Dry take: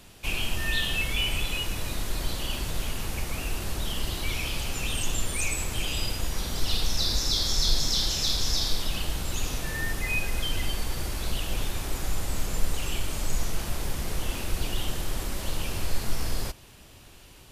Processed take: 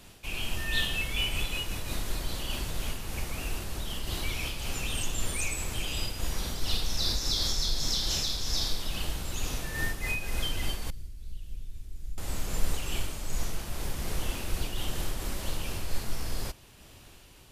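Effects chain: 10.90–12.18 s: amplifier tone stack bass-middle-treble 10-0-1; random flutter of the level, depth 60%

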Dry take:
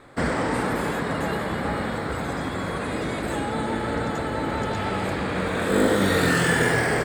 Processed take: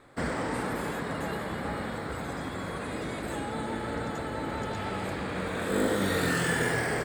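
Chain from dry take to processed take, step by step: treble shelf 8.5 kHz +4 dB; trim -7 dB

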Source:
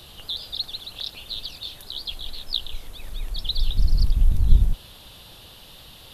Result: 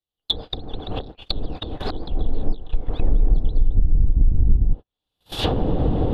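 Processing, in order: recorder AGC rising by 29 dB/s; gate -22 dBFS, range -56 dB; compression 3:1, threshold -16 dBFS, peak gain reduction 8.5 dB; low-pass that closes with the level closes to 450 Hz, closed at -17.5 dBFS; small resonant body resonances 300/450/750/3400 Hz, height 7 dB, ringing for 35 ms; trim +4.5 dB

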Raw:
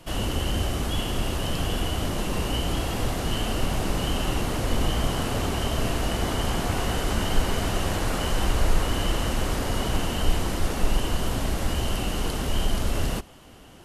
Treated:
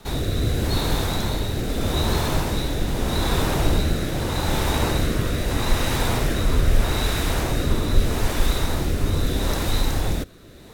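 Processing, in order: tape speed +29%; rotary cabinet horn 0.8 Hz; trim +5 dB

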